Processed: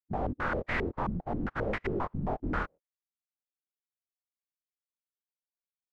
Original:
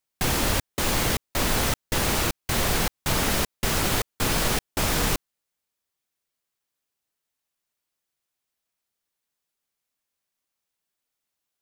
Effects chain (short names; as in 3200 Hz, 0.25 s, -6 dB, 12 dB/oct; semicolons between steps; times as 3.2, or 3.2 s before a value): per-bin compression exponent 0.6; gate -50 dBFS, range -49 dB; time stretch by phase-locked vocoder 0.51×; chorus 0.56 Hz, delay 19 ms, depth 4.5 ms; stepped low-pass 7.5 Hz 200–2000 Hz; gain -6 dB